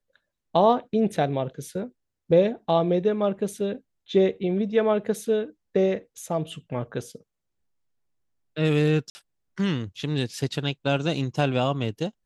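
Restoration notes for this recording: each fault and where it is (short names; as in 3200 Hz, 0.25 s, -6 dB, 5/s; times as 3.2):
9.1–9.15 gap 50 ms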